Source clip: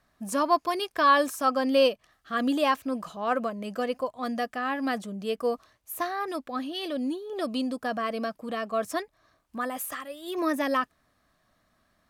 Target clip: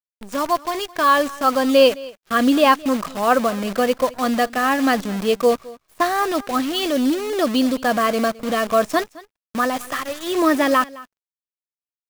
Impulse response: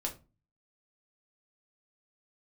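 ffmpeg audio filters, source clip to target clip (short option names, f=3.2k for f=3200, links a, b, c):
-filter_complex "[0:a]lowpass=6.3k,agate=range=-13dB:threshold=-47dB:ratio=16:detection=peak,dynaudnorm=f=280:g=11:m=8.5dB,acrusher=bits=6:dc=4:mix=0:aa=0.000001,asplit=2[a][b];[b]aecho=0:1:214:0.0944[c];[a][c]amix=inputs=2:normalize=0,volume=2.5dB"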